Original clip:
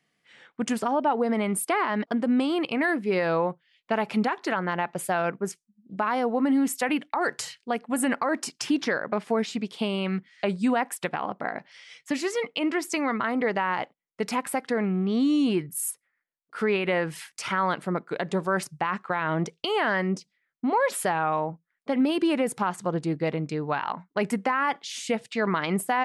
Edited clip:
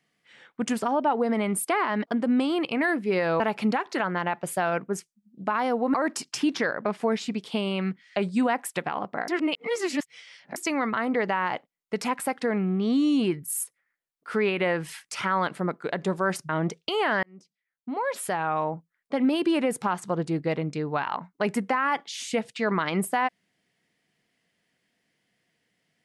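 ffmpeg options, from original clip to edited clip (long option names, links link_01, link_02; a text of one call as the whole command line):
ffmpeg -i in.wav -filter_complex "[0:a]asplit=7[link_01][link_02][link_03][link_04][link_05][link_06][link_07];[link_01]atrim=end=3.402[link_08];[link_02]atrim=start=3.918:end=6.462[link_09];[link_03]atrim=start=8.208:end=11.552[link_10];[link_04]atrim=start=11.548:end=12.832,asetpts=PTS-STARTPTS,areverse[link_11];[link_05]atrim=start=12.828:end=18.762[link_12];[link_06]atrim=start=19.248:end=19.99,asetpts=PTS-STARTPTS,afade=type=out:start_time=0.738:duration=0.004:curve=hsin[link_13];[link_07]atrim=start=19.99,asetpts=PTS-STARTPTS,afade=type=in:duration=1.48[link_14];[link_08][link_09]acrossfade=duration=0.004:curve1=hsin:curve2=hsin[link_15];[link_15][link_10]acrossfade=duration=0.004:curve1=hsin:curve2=hsin[link_16];[link_16][link_11]acrossfade=duration=0.004:curve1=hsin:curve2=hsin[link_17];[link_17][link_12]acrossfade=duration=0.004:curve1=hsin:curve2=hsin[link_18];[link_13][link_14]concat=n=2:v=0:a=1[link_19];[link_18][link_19]acrossfade=duration=0.004:curve1=hsin:curve2=hsin" out.wav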